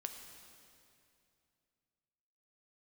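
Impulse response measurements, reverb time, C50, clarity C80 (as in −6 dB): 2.6 s, 6.0 dB, 7.0 dB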